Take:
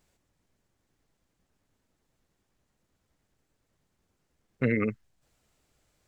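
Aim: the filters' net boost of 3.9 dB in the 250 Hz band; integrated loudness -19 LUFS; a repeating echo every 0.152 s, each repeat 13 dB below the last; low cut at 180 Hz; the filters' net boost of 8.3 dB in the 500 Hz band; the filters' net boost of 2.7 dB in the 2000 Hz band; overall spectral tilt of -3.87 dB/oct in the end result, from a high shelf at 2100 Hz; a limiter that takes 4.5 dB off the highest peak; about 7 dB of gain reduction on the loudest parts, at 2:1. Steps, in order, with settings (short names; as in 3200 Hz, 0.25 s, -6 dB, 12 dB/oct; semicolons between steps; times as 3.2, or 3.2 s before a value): HPF 180 Hz; bell 250 Hz +4 dB; bell 500 Hz +8.5 dB; bell 2000 Hz +4.5 dB; high shelf 2100 Hz -4 dB; compressor 2:1, threshold -29 dBFS; limiter -20 dBFS; feedback echo 0.152 s, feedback 22%, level -13 dB; gain +14.5 dB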